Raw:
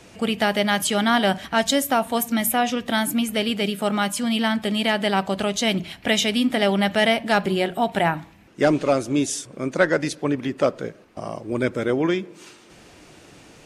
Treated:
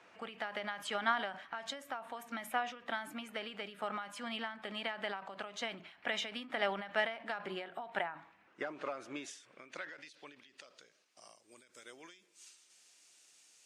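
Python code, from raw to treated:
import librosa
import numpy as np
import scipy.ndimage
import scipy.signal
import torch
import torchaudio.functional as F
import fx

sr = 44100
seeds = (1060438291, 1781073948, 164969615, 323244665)

y = fx.filter_sweep_bandpass(x, sr, from_hz=1300.0, to_hz=7700.0, start_s=8.81, end_s=11.4, q=1.2)
y = fx.end_taper(y, sr, db_per_s=110.0)
y = y * 10.0 ** (-6.0 / 20.0)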